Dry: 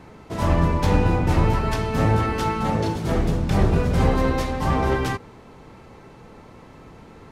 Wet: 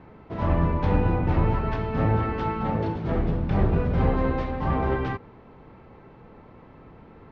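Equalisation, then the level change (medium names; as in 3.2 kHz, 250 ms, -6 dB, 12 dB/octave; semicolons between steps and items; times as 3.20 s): Bessel low-pass 2.7 kHz, order 2; distance through air 150 m; -3.0 dB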